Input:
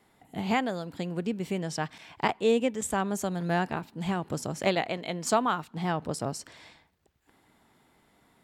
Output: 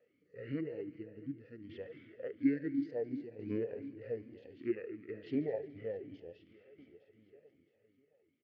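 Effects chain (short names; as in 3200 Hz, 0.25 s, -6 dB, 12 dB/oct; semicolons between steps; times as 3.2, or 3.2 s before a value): harmonic-percussive split percussive -16 dB; on a send: feedback echo 0.664 s, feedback 53%, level -18 dB; on the sum: pitch shift -8.5 st; air absorption 120 m; multi-head echo 72 ms, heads all three, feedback 57%, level -19 dB; tremolo saw down 0.59 Hz, depth 65%; vowel sweep e-i 2.7 Hz; gain +8 dB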